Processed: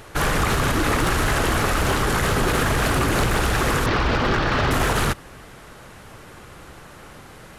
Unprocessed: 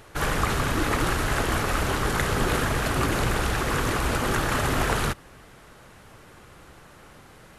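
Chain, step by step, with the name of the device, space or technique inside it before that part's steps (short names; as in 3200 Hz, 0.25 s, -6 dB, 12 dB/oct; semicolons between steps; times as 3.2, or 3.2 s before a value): 3.86–4.71 steep low-pass 5300 Hz 36 dB/oct; limiter into clipper (limiter -16.5 dBFS, peak gain reduction 6.5 dB; hard clip -21 dBFS, distortion -18 dB); gain +6.5 dB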